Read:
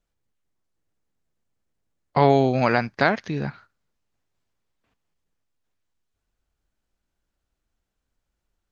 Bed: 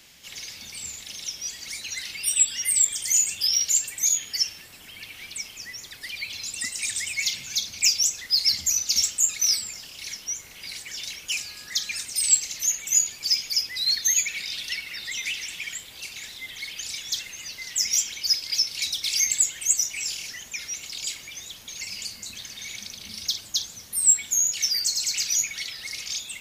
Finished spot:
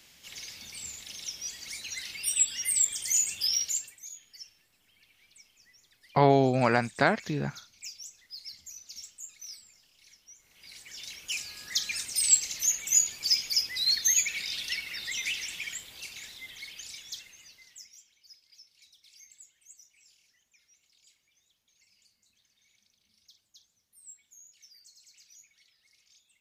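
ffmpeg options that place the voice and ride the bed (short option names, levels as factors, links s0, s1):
-filter_complex "[0:a]adelay=4000,volume=0.631[s0];[1:a]volume=5.62,afade=t=out:st=3.53:d=0.47:silence=0.133352,afade=t=in:st=10.37:d=1.43:silence=0.1,afade=t=out:st=15.36:d=2.57:silence=0.0334965[s1];[s0][s1]amix=inputs=2:normalize=0"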